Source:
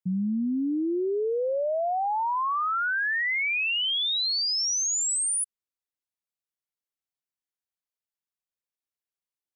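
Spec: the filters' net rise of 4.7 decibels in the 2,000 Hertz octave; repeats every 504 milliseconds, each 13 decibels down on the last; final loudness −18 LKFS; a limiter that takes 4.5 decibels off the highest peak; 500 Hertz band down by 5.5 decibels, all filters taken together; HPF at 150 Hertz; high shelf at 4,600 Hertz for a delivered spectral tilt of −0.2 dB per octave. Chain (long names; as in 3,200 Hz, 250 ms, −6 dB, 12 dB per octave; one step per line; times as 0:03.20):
high-pass filter 150 Hz
parametric band 500 Hz −7.5 dB
parametric band 2,000 Hz +4.5 dB
high-shelf EQ 4,600 Hz +9 dB
brickwall limiter −20 dBFS
repeating echo 504 ms, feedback 22%, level −13 dB
level +4.5 dB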